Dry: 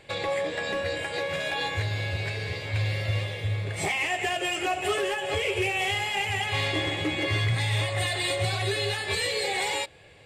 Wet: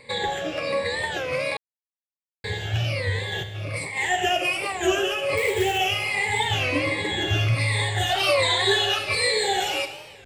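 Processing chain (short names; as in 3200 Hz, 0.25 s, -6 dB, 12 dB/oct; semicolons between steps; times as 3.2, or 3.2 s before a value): moving spectral ripple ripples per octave 0.96, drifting -1.3 Hz, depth 17 dB; 3.32–3.97 negative-ratio compressor -31 dBFS, ratio -1; 5.37–5.78 short-mantissa float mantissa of 2-bit; 8.09–8.99 graphic EQ 125/1000/4000 Hz -11/+9/+5 dB; Schroeder reverb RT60 1.3 s, combs from 28 ms, DRR 8.5 dB; 1.57–2.44 mute; record warp 33 1/3 rpm, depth 160 cents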